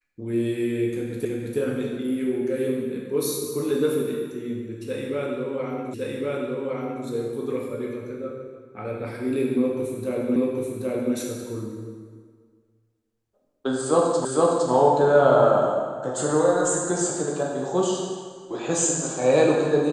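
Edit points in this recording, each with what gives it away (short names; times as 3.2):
1.25 repeat of the last 0.33 s
5.94 repeat of the last 1.11 s
10.36 repeat of the last 0.78 s
14.25 repeat of the last 0.46 s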